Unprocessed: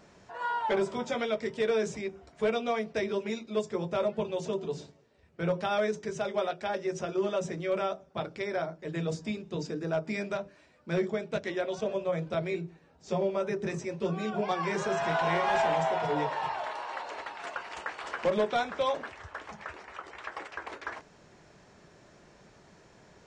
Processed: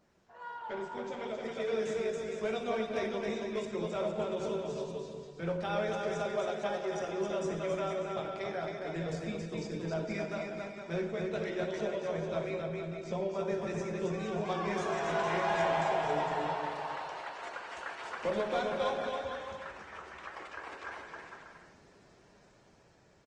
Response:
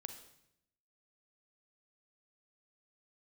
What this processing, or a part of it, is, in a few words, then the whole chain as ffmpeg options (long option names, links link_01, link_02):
speakerphone in a meeting room: -filter_complex "[0:a]aecho=1:1:270|459|591.3|683.9|748.7:0.631|0.398|0.251|0.158|0.1[link_01];[1:a]atrim=start_sample=2205[link_02];[link_01][link_02]afir=irnorm=-1:irlink=0,asplit=2[link_03][link_04];[link_04]adelay=180,highpass=300,lowpass=3400,asoftclip=type=hard:threshold=-26dB,volume=-16dB[link_05];[link_03][link_05]amix=inputs=2:normalize=0,dynaudnorm=framelen=200:gausssize=17:maxgain=6dB,volume=-7.5dB" -ar 48000 -c:a libopus -b:a 20k